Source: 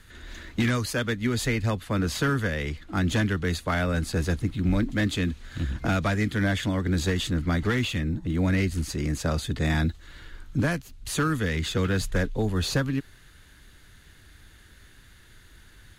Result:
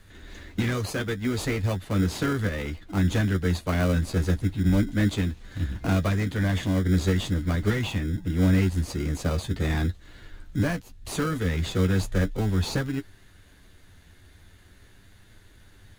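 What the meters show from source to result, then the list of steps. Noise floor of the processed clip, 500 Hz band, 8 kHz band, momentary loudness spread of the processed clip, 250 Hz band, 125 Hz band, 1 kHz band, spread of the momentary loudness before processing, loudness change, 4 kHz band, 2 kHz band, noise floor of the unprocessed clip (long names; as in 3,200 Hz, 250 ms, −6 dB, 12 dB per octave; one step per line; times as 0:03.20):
−54 dBFS, 0.0 dB, −2.5 dB, 7 LU, +0.5 dB, +2.0 dB, −2.5 dB, 6 LU, +0.5 dB, −3.0 dB, −3.5 dB, −53 dBFS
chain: flanger 0.39 Hz, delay 9.8 ms, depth 1.5 ms, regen +32%
in parallel at −4.5 dB: decimation without filtering 25×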